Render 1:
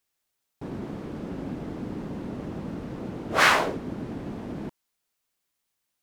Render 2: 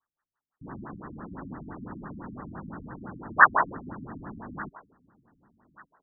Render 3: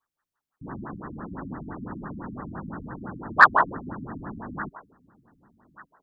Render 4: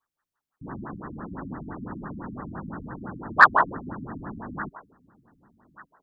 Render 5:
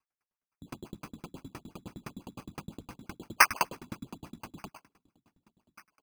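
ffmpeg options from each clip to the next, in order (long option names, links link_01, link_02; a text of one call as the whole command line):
ffmpeg -i in.wav -af "lowshelf=frequency=780:width_type=q:width=1.5:gain=-12,aecho=1:1:1163|2326:0.0668|0.0134,afftfilt=real='re*lt(b*sr/1024,290*pow(2000/290,0.5+0.5*sin(2*PI*5.9*pts/sr)))':imag='im*lt(b*sr/1024,290*pow(2000/290,0.5+0.5*sin(2*PI*5.9*pts/sr)))':win_size=1024:overlap=0.75,volume=6.5dB" out.wav
ffmpeg -i in.wav -af "acontrast=21,volume=-1dB" out.wav
ffmpeg -i in.wav -af anull out.wav
ffmpeg -i in.wav -af "acrusher=samples=12:mix=1:aa=0.000001,aecho=1:1:80|160|240|320:0.0891|0.0499|0.0279|0.0157,aeval=exprs='val(0)*pow(10,-39*if(lt(mod(9.7*n/s,1),2*abs(9.7)/1000),1-mod(9.7*n/s,1)/(2*abs(9.7)/1000),(mod(9.7*n/s,1)-2*abs(9.7)/1000)/(1-2*abs(9.7)/1000))/20)':channel_layout=same" out.wav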